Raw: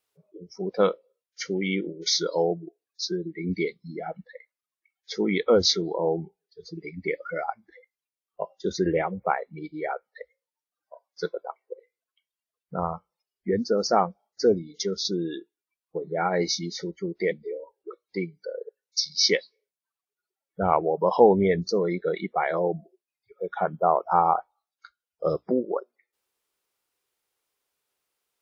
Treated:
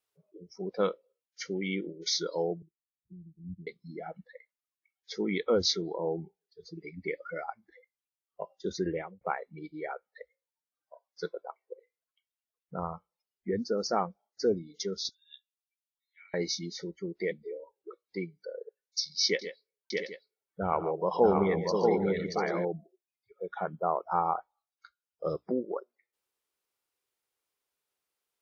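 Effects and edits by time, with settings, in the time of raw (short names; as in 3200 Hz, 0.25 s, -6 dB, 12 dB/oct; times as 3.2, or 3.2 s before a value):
2.62–3.67 inverse Chebyshev low-pass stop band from 950 Hz, stop band 80 dB
8.7–9.21 fade out equal-power
15.09–16.34 steep high-pass 2400 Hz
19.27–22.65 tapped delay 0.12/0.144/0.631/0.698/0.791 s -15/-13/-3.5/-11/-15.5 dB
whole clip: dynamic EQ 700 Hz, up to -3 dB, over -33 dBFS, Q 2; gain -6 dB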